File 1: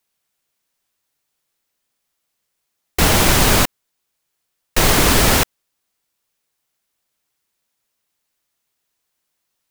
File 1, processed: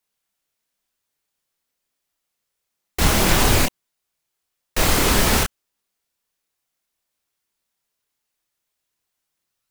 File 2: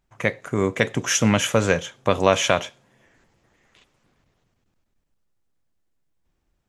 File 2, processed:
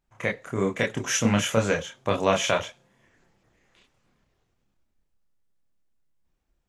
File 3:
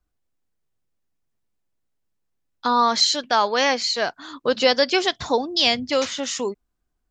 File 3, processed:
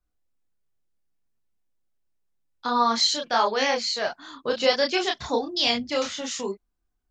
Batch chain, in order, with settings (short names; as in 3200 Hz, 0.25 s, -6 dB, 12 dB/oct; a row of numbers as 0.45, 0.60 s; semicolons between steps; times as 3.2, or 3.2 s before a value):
chorus voices 4, 1.1 Hz, delay 28 ms, depth 3 ms; gain -1 dB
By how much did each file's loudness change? -3.5, -4.0, -3.5 LU